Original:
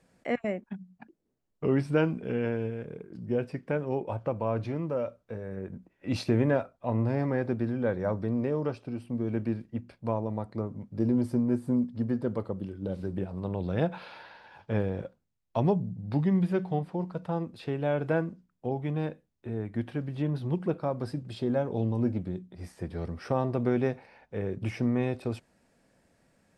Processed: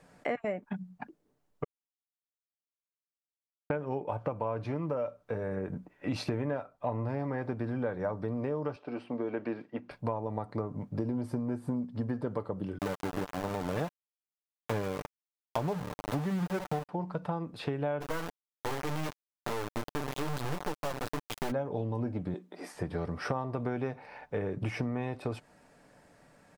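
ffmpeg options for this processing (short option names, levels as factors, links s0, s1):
-filter_complex "[0:a]asettb=1/sr,asplit=3[s0][s1][s2];[s0]atrim=end=8.764[s3];[s1]atrim=start=8.76:end=9.91,asetpts=PTS-STARTPTS,afade=t=in:d=0.004:c=qsin,afade=t=out:st=1.146:d=0.004:c=qsin,highpass=310,lowpass=4100[s4];[s2]atrim=start=9.906[s5];[s3][s4]acrossfade=d=0.004:c1=hsin:c2=qsin[s6];[s6][s5]acrossfade=d=0.004:c1=qsin:c2=hsin,asettb=1/sr,asplit=3[s7][s8][s9];[s7]atrim=end=12.784[s10];[s8]atrim=start=12.78:end=16.89,asetpts=PTS-STARTPTS,afade=t=in:d=0.004:c=qsin,afade=t=out:st=4.106:d=0.004:c=qsin,aeval=exprs='val(0)*gte(abs(val(0)),0.0266)':c=same[s11];[s9]atrim=start=16.886[s12];[s10][s11]acrossfade=d=0.004:c1=hsin:c2=qsin[s13];[s13][s12]acrossfade=d=0.004:c1=qsin:c2=hsin,asplit=3[s14][s15][s16];[s14]afade=t=out:st=18:d=0.02[s17];[s15]acrusher=bits=3:dc=4:mix=0:aa=0.000001,afade=t=in:st=18:d=0.02,afade=t=out:st=21.5:d=0.02[s18];[s16]afade=t=in:st=21.5:d=0.02[s19];[s17][s18][s19]amix=inputs=3:normalize=0,asettb=1/sr,asplit=3[s20][s21][s22];[s20]atrim=end=22.344[s23];[s21]atrim=start=22.34:end=22.75,asetpts=PTS-STARTPTS,afade=t=in:d=0.004:c=qsin,afade=t=out:st=0.406:d=0.004:c=qsin,highpass=f=270:w=0.5412,highpass=f=270:w=1.3066[s24];[s22]atrim=start=22.746[s25];[s23][s24]acrossfade=d=0.004:c1=hsin:c2=qsin[s26];[s26][s25]acrossfade=d=0.004:c1=qsin:c2=hsin,asplit=3[s27][s28][s29];[s27]atrim=end=1.64,asetpts=PTS-STARTPTS,afade=t=out:st=1.636:d=0.004:c=hsin[s30];[s28]atrim=start=1.64:end=3.7,asetpts=PTS-STARTPTS,volume=0[s31];[s29]atrim=start=3.7,asetpts=PTS-STARTPTS,afade=t=in:d=0.004:c=hsin[s32];[s30][s31][s32]concat=n=3:v=0:a=1,equalizer=f=980:t=o:w=1.8:g=6.5,aecho=1:1:6.8:0.31,acompressor=threshold=0.02:ratio=6,volume=1.58"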